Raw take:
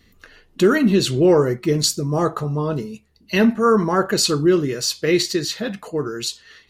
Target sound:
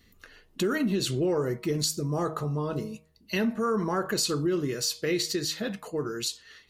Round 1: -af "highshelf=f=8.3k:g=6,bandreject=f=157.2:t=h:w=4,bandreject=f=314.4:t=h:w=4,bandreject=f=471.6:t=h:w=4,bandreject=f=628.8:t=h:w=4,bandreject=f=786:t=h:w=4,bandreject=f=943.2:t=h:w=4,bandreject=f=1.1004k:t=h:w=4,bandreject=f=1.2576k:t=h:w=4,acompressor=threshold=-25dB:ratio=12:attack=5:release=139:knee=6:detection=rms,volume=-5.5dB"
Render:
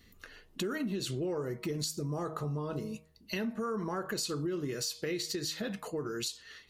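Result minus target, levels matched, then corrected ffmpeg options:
compressor: peak gain reduction +8 dB
-af "highshelf=f=8.3k:g=6,bandreject=f=157.2:t=h:w=4,bandreject=f=314.4:t=h:w=4,bandreject=f=471.6:t=h:w=4,bandreject=f=628.8:t=h:w=4,bandreject=f=786:t=h:w=4,bandreject=f=943.2:t=h:w=4,bandreject=f=1.1004k:t=h:w=4,bandreject=f=1.2576k:t=h:w=4,acompressor=threshold=-16dB:ratio=12:attack=5:release=139:knee=6:detection=rms,volume=-5.5dB"

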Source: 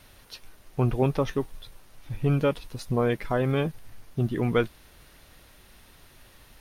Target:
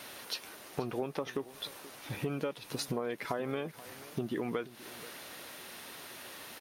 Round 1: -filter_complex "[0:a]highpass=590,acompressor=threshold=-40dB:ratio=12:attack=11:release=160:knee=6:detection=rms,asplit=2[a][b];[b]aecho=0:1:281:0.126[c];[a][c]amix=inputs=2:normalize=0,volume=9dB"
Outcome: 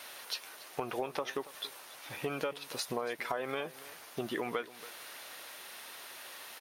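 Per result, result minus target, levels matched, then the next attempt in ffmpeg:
echo 0.2 s early; 250 Hz band -4.5 dB
-filter_complex "[0:a]highpass=590,acompressor=threshold=-40dB:ratio=12:attack=11:release=160:knee=6:detection=rms,asplit=2[a][b];[b]aecho=0:1:481:0.126[c];[a][c]amix=inputs=2:normalize=0,volume=9dB"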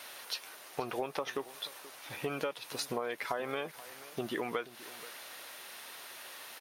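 250 Hz band -4.5 dB
-filter_complex "[0:a]highpass=270,acompressor=threshold=-40dB:ratio=12:attack=11:release=160:knee=6:detection=rms,asplit=2[a][b];[b]aecho=0:1:481:0.126[c];[a][c]amix=inputs=2:normalize=0,volume=9dB"

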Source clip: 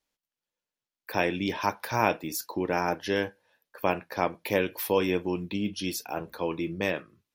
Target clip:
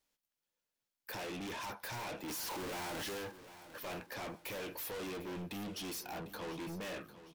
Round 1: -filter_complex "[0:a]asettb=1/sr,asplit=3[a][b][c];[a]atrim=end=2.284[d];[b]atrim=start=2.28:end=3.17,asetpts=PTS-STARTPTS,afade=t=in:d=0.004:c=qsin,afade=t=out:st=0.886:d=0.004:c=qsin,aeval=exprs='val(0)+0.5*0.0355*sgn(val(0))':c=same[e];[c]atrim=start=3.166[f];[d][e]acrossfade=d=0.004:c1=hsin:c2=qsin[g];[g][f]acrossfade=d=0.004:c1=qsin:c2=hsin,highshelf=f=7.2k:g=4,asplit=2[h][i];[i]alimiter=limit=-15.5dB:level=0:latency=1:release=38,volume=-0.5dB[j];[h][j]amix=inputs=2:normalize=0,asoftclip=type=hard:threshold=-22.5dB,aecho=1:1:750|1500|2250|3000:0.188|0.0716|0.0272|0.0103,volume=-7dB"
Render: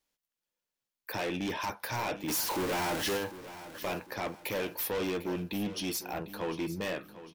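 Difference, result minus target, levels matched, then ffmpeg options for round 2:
hard clip: distortion -4 dB
-filter_complex "[0:a]asettb=1/sr,asplit=3[a][b][c];[a]atrim=end=2.284[d];[b]atrim=start=2.28:end=3.17,asetpts=PTS-STARTPTS,afade=t=in:d=0.004:c=qsin,afade=t=out:st=0.886:d=0.004:c=qsin,aeval=exprs='val(0)+0.5*0.0355*sgn(val(0))':c=same[e];[c]atrim=start=3.166[f];[d][e]acrossfade=d=0.004:c1=hsin:c2=qsin[g];[g][f]acrossfade=d=0.004:c1=qsin:c2=hsin,highshelf=f=7.2k:g=4,asplit=2[h][i];[i]alimiter=limit=-15.5dB:level=0:latency=1:release=38,volume=-0.5dB[j];[h][j]amix=inputs=2:normalize=0,asoftclip=type=hard:threshold=-34dB,aecho=1:1:750|1500|2250|3000:0.188|0.0716|0.0272|0.0103,volume=-7dB"

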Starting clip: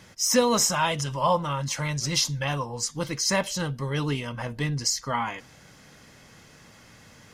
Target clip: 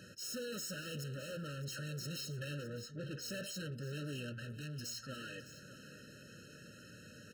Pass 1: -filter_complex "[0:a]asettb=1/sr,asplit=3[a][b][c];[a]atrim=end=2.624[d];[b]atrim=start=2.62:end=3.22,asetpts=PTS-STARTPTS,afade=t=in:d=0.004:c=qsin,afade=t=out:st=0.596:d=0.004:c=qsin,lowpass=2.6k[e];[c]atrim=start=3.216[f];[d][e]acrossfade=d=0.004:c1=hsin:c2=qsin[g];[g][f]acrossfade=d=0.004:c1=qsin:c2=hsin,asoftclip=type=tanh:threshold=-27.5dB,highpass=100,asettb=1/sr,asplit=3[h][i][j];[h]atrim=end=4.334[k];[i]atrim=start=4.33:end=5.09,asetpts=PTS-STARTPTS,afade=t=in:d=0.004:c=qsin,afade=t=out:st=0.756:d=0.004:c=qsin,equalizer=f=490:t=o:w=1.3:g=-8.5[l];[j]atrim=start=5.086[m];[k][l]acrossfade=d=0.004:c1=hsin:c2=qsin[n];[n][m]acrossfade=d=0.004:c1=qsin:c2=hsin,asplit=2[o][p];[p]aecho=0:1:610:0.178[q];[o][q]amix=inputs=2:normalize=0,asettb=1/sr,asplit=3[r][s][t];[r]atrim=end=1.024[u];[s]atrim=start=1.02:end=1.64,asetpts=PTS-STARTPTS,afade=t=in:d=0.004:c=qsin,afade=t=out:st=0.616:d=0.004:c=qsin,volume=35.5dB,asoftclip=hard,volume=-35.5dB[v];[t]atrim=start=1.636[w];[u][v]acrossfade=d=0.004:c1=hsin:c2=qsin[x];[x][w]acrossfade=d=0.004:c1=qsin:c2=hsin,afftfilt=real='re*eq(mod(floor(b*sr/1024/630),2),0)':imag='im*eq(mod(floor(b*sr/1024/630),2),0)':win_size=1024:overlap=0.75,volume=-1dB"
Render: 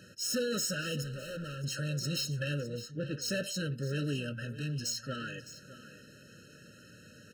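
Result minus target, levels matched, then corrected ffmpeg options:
soft clip: distortion -5 dB
-filter_complex "[0:a]asettb=1/sr,asplit=3[a][b][c];[a]atrim=end=2.624[d];[b]atrim=start=2.62:end=3.22,asetpts=PTS-STARTPTS,afade=t=in:d=0.004:c=qsin,afade=t=out:st=0.596:d=0.004:c=qsin,lowpass=2.6k[e];[c]atrim=start=3.216[f];[d][e]acrossfade=d=0.004:c1=hsin:c2=qsin[g];[g][f]acrossfade=d=0.004:c1=qsin:c2=hsin,asoftclip=type=tanh:threshold=-39dB,highpass=100,asettb=1/sr,asplit=3[h][i][j];[h]atrim=end=4.334[k];[i]atrim=start=4.33:end=5.09,asetpts=PTS-STARTPTS,afade=t=in:d=0.004:c=qsin,afade=t=out:st=0.756:d=0.004:c=qsin,equalizer=f=490:t=o:w=1.3:g=-8.5[l];[j]atrim=start=5.086[m];[k][l]acrossfade=d=0.004:c1=hsin:c2=qsin[n];[n][m]acrossfade=d=0.004:c1=qsin:c2=hsin,asplit=2[o][p];[p]aecho=0:1:610:0.178[q];[o][q]amix=inputs=2:normalize=0,asettb=1/sr,asplit=3[r][s][t];[r]atrim=end=1.024[u];[s]atrim=start=1.02:end=1.64,asetpts=PTS-STARTPTS,afade=t=in:d=0.004:c=qsin,afade=t=out:st=0.616:d=0.004:c=qsin,volume=35.5dB,asoftclip=hard,volume=-35.5dB[v];[t]atrim=start=1.636[w];[u][v]acrossfade=d=0.004:c1=hsin:c2=qsin[x];[x][w]acrossfade=d=0.004:c1=qsin:c2=hsin,afftfilt=real='re*eq(mod(floor(b*sr/1024/630),2),0)':imag='im*eq(mod(floor(b*sr/1024/630),2),0)':win_size=1024:overlap=0.75,volume=-1dB"

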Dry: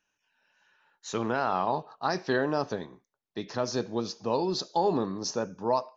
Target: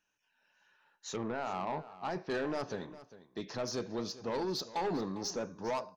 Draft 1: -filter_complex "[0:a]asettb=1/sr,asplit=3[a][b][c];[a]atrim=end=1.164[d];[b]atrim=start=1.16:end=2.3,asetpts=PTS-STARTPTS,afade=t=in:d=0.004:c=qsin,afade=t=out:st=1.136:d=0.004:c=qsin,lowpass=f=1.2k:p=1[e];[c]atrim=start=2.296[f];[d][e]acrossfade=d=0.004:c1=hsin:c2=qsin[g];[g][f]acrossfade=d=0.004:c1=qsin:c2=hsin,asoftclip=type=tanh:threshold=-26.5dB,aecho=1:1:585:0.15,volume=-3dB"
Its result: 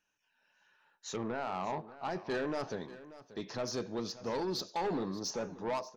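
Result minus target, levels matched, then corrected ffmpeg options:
echo 0.183 s late
-filter_complex "[0:a]asettb=1/sr,asplit=3[a][b][c];[a]atrim=end=1.164[d];[b]atrim=start=1.16:end=2.3,asetpts=PTS-STARTPTS,afade=t=in:d=0.004:c=qsin,afade=t=out:st=1.136:d=0.004:c=qsin,lowpass=f=1.2k:p=1[e];[c]atrim=start=2.296[f];[d][e]acrossfade=d=0.004:c1=hsin:c2=qsin[g];[g][f]acrossfade=d=0.004:c1=qsin:c2=hsin,asoftclip=type=tanh:threshold=-26.5dB,aecho=1:1:402:0.15,volume=-3dB"

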